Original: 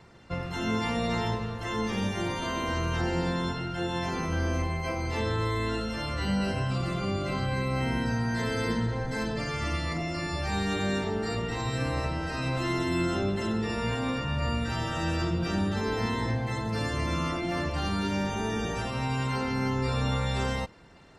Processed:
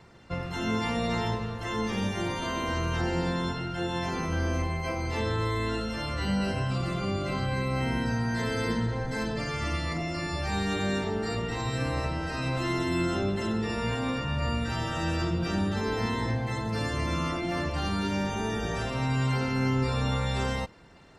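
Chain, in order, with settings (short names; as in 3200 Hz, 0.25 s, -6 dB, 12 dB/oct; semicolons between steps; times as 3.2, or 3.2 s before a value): 18.49–19.84 flutter echo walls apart 9.1 m, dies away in 0.43 s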